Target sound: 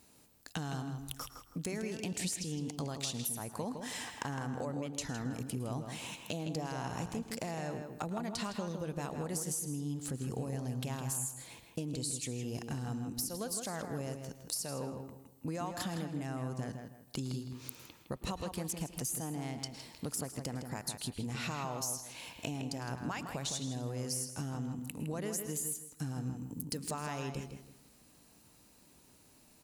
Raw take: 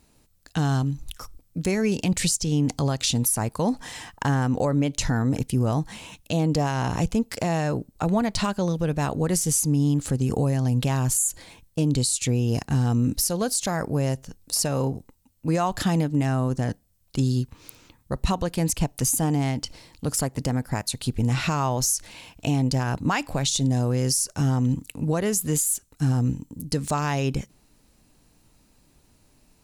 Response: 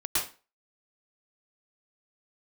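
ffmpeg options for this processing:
-filter_complex "[0:a]highpass=frequency=160:poles=1,highshelf=frequency=8800:gain=6.5,acompressor=threshold=-35dB:ratio=5,asplit=2[link_01][link_02];[link_02]adelay=161,lowpass=frequency=3500:poles=1,volume=-6.5dB,asplit=2[link_03][link_04];[link_04]adelay=161,lowpass=frequency=3500:poles=1,volume=0.29,asplit=2[link_05][link_06];[link_06]adelay=161,lowpass=frequency=3500:poles=1,volume=0.29,asplit=2[link_07][link_08];[link_08]adelay=161,lowpass=frequency=3500:poles=1,volume=0.29[link_09];[link_01][link_03][link_05][link_07][link_09]amix=inputs=5:normalize=0,asplit=2[link_10][link_11];[1:a]atrim=start_sample=2205[link_12];[link_11][link_12]afir=irnorm=-1:irlink=0,volume=-22dB[link_13];[link_10][link_13]amix=inputs=2:normalize=0,volume=-2.5dB"

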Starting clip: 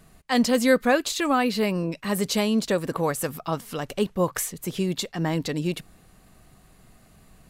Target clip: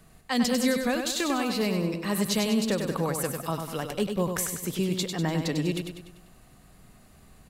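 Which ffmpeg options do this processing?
ffmpeg -i in.wav -filter_complex "[0:a]acrossover=split=240|3000[link_01][link_02][link_03];[link_02]acompressor=threshold=-25dB:ratio=6[link_04];[link_01][link_04][link_03]amix=inputs=3:normalize=0,asplit=2[link_05][link_06];[link_06]aecho=0:1:98|196|294|392|490|588:0.501|0.246|0.12|0.059|0.0289|0.0142[link_07];[link_05][link_07]amix=inputs=2:normalize=0,volume=-1.5dB" out.wav

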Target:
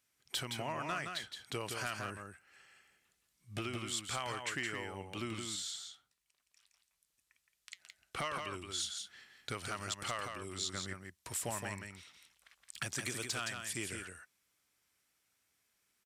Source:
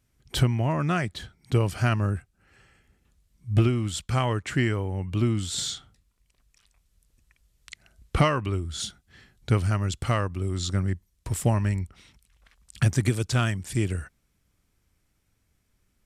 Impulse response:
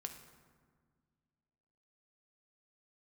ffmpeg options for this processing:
-filter_complex "[0:a]highpass=frequency=1300:poles=1,acompressor=threshold=-34dB:ratio=4,asettb=1/sr,asplit=3[link_01][link_02][link_03];[link_01]atrim=end=5.394[link_04];[link_02]atrim=start=5.39:end=8.19,asetpts=PTS-STARTPTS,afade=type=in:duration=0.004:curve=qsin,afade=type=out:start_time=2.796:duration=0.004:curve=qsin,flanger=delay=4.7:depth=3.9:regen=81:speed=1.3:shape=triangular[link_05];[link_03]atrim=start=8.186[link_06];[link_04][link_05]acrossfade=duration=0.004:curve1=hsin:curve2=qsin[link_07];[link_07][link_06]acrossfade=duration=0.004:curve1=qsin:curve2=hsin,asoftclip=type=hard:threshold=-26.5dB,aecho=1:1:168:0.531,volume=-1dB"

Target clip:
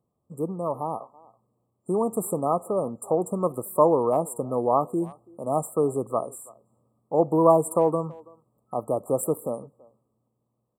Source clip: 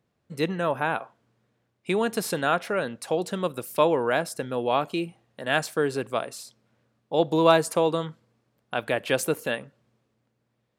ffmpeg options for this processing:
ffmpeg -i in.wav -filter_complex "[0:a]afftfilt=real='re*(1-between(b*sr/4096,1300,7300))':imag='im*(1-between(b*sr/4096,1300,7300))':win_size=4096:overlap=0.75,asplit=2[link_01][link_02];[link_02]adelay=330,highpass=300,lowpass=3400,asoftclip=type=hard:threshold=-14.5dB,volume=-23dB[link_03];[link_01][link_03]amix=inputs=2:normalize=0,dynaudnorm=framelen=570:gausssize=7:maxgain=6dB,volume=-2.5dB" out.wav

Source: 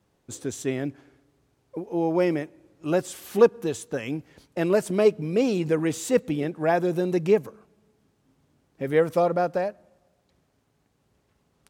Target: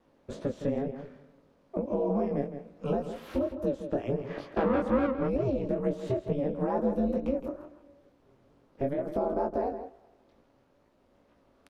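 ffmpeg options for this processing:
ffmpeg -i in.wav -filter_complex "[0:a]lowpass=11000,equalizer=frequency=430:width_type=o:width=0.83:gain=13.5,acrossover=split=1100|4100[link_01][link_02][link_03];[link_01]acompressor=threshold=-10dB:ratio=4[link_04];[link_02]acompressor=threshold=-49dB:ratio=4[link_05];[link_03]acompressor=threshold=-56dB:ratio=4[link_06];[link_04][link_05][link_06]amix=inputs=3:normalize=0,alimiter=limit=-10.5dB:level=0:latency=1,acompressor=threshold=-24dB:ratio=6,asplit=3[link_07][link_08][link_09];[link_07]afade=type=out:start_time=4.18:duration=0.02[link_10];[link_08]asplit=2[link_11][link_12];[link_12]highpass=frequency=720:poles=1,volume=22dB,asoftclip=type=tanh:threshold=-17.5dB[link_13];[link_11][link_13]amix=inputs=2:normalize=0,lowpass=frequency=1300:poles=1,volume=-6dB,afade=type=in:start_time=4.18:duration=0.02,afade=type=out:start_time=5.26:duration=0.02[link_14];[link_09]afade=type=in:start_time=5.26:duration=0.02[link_15];[link_10][link_14][link_15]amix=inputs=3:normalize=0,equalizer=frequency=125:width_type=o:width=1:gain=-4,equalizer=frequency=500:width_type=o:width=1:gain=-5,equalizer=frequency=1000:width_type=o:width=1:gain=4,equalizer=frequency=8000:width_type=o:width=1:gain=-10,aeval=exprs='val(0)*sin(2*PI*140*n/s)':channel_layout=same,flanger=delay=17:depth=6.3:speed=2.2,asplit=2[link_16][link_17];[link_17]adelay=163.3,volume=-10dB,highshelf=frequency=4000:gain=-3.67[link_18];[link_16][link_18]amix=inputs=2:normalize=0,volume=6.5dB" out.wav

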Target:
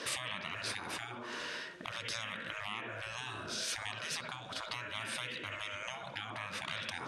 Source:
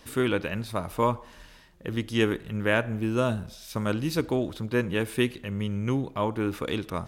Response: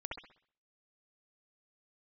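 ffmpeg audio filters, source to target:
-filter_complex "[0:a]highpass=320,equalizer=frequency=500:width_type=q:width=4:gain=-4,equalizer=frequency=820:width_type=q:width=4:gain=-9,equalizer=frequency=1500:width_type=q:width=4:gain=6,equalizer=frequency=7400:width_type=q:width=4:gain=-5,lowpass=frequency=8500:width=0.5412,lowpass=frequency=8500:width=1.3066,asplit=2[link_01][link_02];[1:a]atrim=start_sample=2205[link_03];[link_02][link_03]afir=irnorm=-1:irlink=0,volume=-6dB[link_04];[link_01][link_04]amix=inputs=2:normalize=0,acompressor=threshold=-35dB:ratio=16,equalizer=frequency=460:width=2.1:gain=7,afftfilt=real='re*lt(hypot(re,im),0.0158)':imag='im*lt(hypot(re,im),0.0158)':win_size=1024:overlap=0.75,volume=9.5dB"

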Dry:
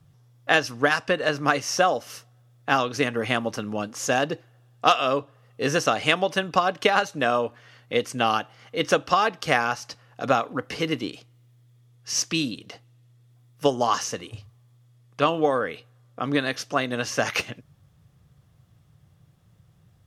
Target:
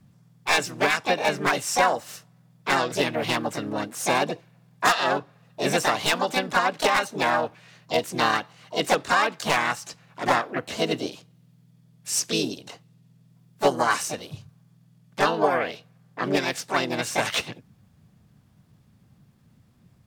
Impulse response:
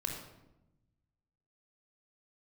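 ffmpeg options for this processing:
-filter_complex "[0:a]aeval=exprs='0.316*(abs(mod(val(0)/0.316+3,4)-2)-1)':channel_layout=same,asplit=4[link_01][link_02][link_03][link_04];[link_02]asetrate=58866,aresample=44100,atempo=0.749154,volume=-1dB[link_05];[link_03]asetrate=66075,aresample=44100,atempo=0.66742,volume=-5dB[link_06];[link_04]asetrate=88200,aresample=44100,atempo=0.5,volume=-14dB[link_07];[link_01][link_05][link_06][link_07]amix=inputs=4:normalize=0,volume=-3dB"

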